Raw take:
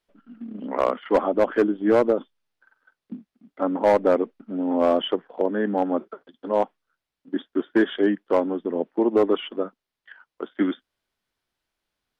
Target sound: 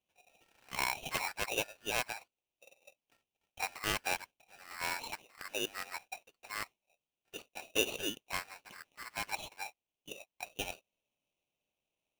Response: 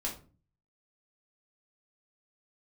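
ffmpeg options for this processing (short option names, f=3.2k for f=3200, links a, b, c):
-af "asuperpass=centerf=1600:order=4:qfactor=1.8,afreqshift=-490,aeval=exprs='val(0)*sgn(sin(2*PI*1600*n/s))':c=same"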